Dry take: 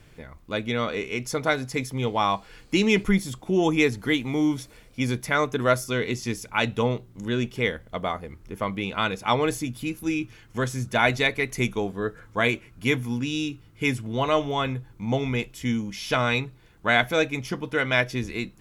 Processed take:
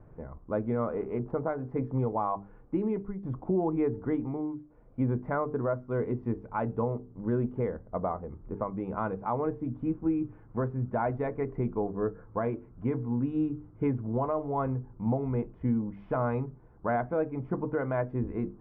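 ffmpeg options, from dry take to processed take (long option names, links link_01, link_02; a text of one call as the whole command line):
ffmpeg -i in.wav -filter_complex "[0:a]asettb=1/sr,asplit=3[link_01][link_02][link_03];[link_01]atrim=end=0.944[link_04];[link_02]atrim=start=0.94:end=1.59,asetpts=PTS-STARTPTS,afade=type=in:duration=0.004:curve=qsin,afade=type=out:start_time=0.646:duration=0.004:curve=qsin,adynamicsmooth=sensitivity=6.5:basefreq=700[link_05];[link_03]atrim=start=1.586[link_06];[link_04][link_05]acrossfade=duration=0.004:curve1=hsin:curve2=qsin[link_07];[link_07][link_06]acrossfade=duration=0.004:curve1=qsin:curve2=hsin,asplit=4[link_08][link_09][link_10][link_11];[link_08]atrim=end=3.23,asetpts=PTS-STARTPTS,afade=type=out:start_time=2.19:duration=1.04:silence=0.0891251[link_12];[link_09]atrim=start=3.23:end=4.56,asetpts=PTS-STARTPTS,afade=type=in:duration=0.004:curve=hsin:silence=0.0891251,afade=type=out:start_time=0.91:duration=0.42:silence=0.133352[link_13];[link_10]atrim=start=4.56:end=4.65,asetpts=PTS-STARTPTS,volume=-17.5dB[link_14];[link_11]atrim=start=4.65,asetpts=PTS-STARTPTS,afade=type=in:duration=0.42:silence=0.133352[link_15];[link_12][link_13][link_14][link_15]concat=n=4:v=0:a=1,lowpass=frequency=1100:width=0.5412,lowpass=frequency=1100:width=1.3066,bandreject=frequency=50:width_type=h:width=6,bandreject=frequency=100:width_type=h:width=6,bandreject=frequency=150:width_type=h:width=6,bandreject=frequency=200:width_type=h:width=6,bandreject=frequency=250:width_type=h:width=6,bandreject=frequency=300:width_type=h:width=6,bandreject=frequency=350:width_type=h:width=6,bandreject=frequency=400:width_type=h:width=6,bandreject=frequency=450:width_type=h:width=6,alimiter=limit=-21dB:level=0:latency=1:release=463,volume=1.5dB" out.wav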